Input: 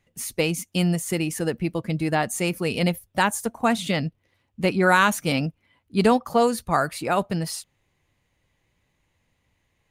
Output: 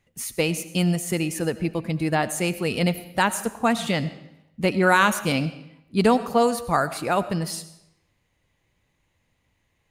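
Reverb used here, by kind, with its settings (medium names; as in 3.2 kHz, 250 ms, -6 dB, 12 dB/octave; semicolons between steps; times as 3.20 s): algorithmic reverb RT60 0.84 s, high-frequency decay 0.9×, pre-delay 50 ms, DRR 14 dB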